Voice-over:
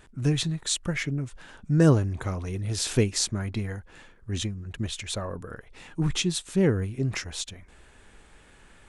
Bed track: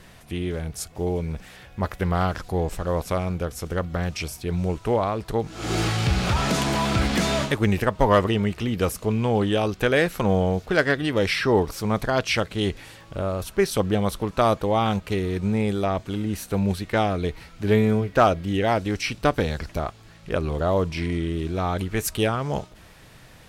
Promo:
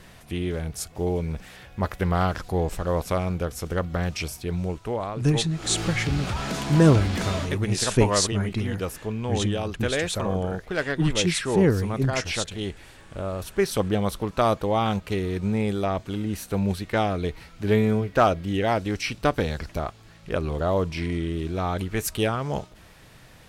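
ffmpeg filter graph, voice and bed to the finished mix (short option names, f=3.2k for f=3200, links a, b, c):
-filter_complex "[0:a]adelay=5000,volume=2.5dB[a];[1:a]volume=5dB,afade=t=out:st=4.27:d=0.66:silence=0.473151,afade=t=in:st=12.93:d=0.73:silence=0.562341[b];[a][b]amix=inputs=2:normalize=0"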